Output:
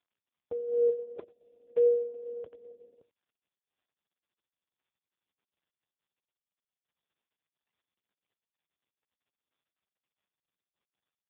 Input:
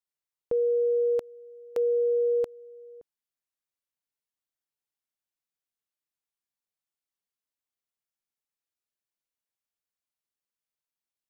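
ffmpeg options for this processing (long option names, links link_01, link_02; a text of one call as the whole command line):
ffmpeg -i in.wav -filter_complex "[0:a]asettb=1/sr,asplit=3[link_01][link_02][link_03];[link_01]atrim=end=0.894[link_04];[link_02]atrim=start=0.89:end=1.6,asetpts=PTS-STARTPTS,afade=type=in:duration=0.004:curve=qsin,afade=type=out:start_time=0.706:duration=0.004:curve=qsin,aecho=1:1:5:0.61,atrim=end_sample=31311[link_05];[link_03]atrim=start=1.596[link_06];[link_04][link_05]acrossfade=duration=0.004:curve1=hsin:curve2=qsin[link_07];[link_07][link_06]acrossfade=duration=0.004:curve1=qsin:curve2=hsin,aphaser=in_gain=1:out_gain=1:delay=3.3:decay=0.64:speed=0.37:type=triangular,asplit=2[link_08][link_09];[link_09]adelay=87.46,volume=-17dB,highshelf=frequency=4000:gain=-1.97[link_10];[link_08][link_10]amix=inputs=2:normalize=0,volume=-4dB" -ar 8000 -c:a libopencore_amrnb -b:a 4750 out.amr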